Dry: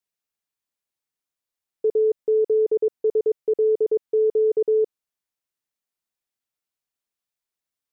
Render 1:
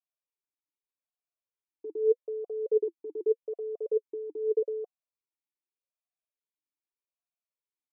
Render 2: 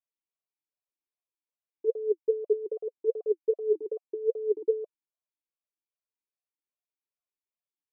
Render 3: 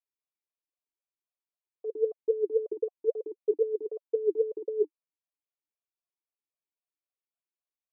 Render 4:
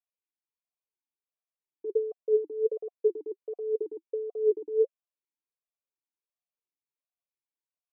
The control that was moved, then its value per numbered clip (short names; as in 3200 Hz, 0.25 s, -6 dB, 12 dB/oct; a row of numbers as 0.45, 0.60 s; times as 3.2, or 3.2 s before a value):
vowel sweep, rate: 0.82, 2.5, 3.8, 1.4 Hz